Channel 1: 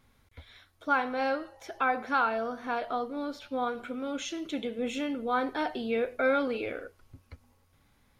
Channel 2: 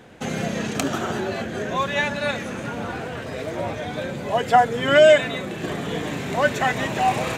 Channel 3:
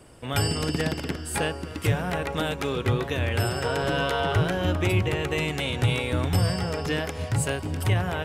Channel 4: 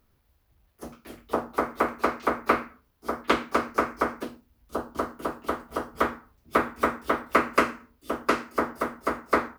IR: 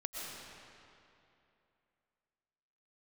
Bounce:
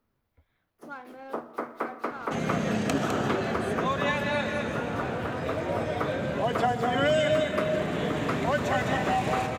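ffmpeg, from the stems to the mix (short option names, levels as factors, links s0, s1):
-filter_complex "[0:a]adynamicsmooth=sensitivity=3.5:basefreq=2000,volume=0.2[s0];[1:a]adelay=2100,volume=0.531,asplit=3[s1][s2][s3];[s2]volume=0.562[s4];[s3]volume=0.631[s5];[2:a]acompressor=threshold=0.0316:ratio=6,adelay=2350,volume=0.335[s6];[3:a]highpass=f=130:w=0.5412,highpass=f=130:w=1.3066,volume=0.398,asplit=2[s7][s8];[s8]volume=0.237[s9];[4:a]atrim=start_sample=2205[s10];[s4][s9]amix=inputs=2:normalize=0[s11];[s11][s10]afir=irnorm=-1:irlink=0[s12];[s5]aecho=0:1:206:1[s13];[s0][s1][s6][s7][s12][s13]amix=inputs=6:normalize=0,highshelf=f=3700:g=-7.5,acrossover=split=300|3000[s14][s15][s16];[s15]acompressor=threshold=0.0631:ratio=6[s17];[s14][s17][s16]amix=inputs=3:normalize=0"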